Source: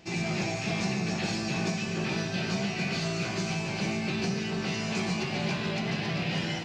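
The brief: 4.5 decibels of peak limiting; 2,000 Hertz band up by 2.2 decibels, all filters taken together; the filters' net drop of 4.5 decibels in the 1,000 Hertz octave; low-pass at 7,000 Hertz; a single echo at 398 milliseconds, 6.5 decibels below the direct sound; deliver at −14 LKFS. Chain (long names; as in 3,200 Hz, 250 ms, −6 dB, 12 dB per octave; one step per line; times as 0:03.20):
low-pass filter 7,000 Hz
parametric band 1,000 Hz −7.5 dB
parametric band 2,000 Hz +4.5 dB
brickwall limiter −22.5 dBFS
single-tap delay 398 ms −6.5 dB
level +16.5 dB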